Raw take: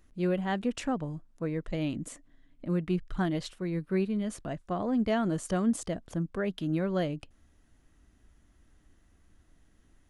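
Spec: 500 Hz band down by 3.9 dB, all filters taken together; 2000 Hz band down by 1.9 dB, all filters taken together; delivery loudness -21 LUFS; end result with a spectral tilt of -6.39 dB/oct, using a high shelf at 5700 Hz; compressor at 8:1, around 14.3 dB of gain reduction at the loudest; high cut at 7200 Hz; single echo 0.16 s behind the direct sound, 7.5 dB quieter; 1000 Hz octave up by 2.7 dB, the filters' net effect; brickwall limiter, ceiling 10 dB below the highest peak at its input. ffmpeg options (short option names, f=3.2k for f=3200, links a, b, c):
-af "lowpass=7.2k,equalizer=f=500:t=o:g=-8,equalizer=f=1k:t=o:g=9,equalizer=f=2k:t=o:g=-5,highshelf=f=5.7k:g=-5.5,acompressor=threshold=-39dB:ratio=8,alimiter=level_in=15dB:limit=-24dB:level=0:latency=1,volume=-15dB,aecho=1:1:160:0.422,volume=26.5dB"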